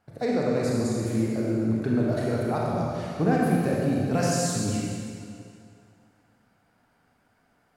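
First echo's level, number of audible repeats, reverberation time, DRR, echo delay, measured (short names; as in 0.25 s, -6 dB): none, none, 2.3 s, -4.5 dB, none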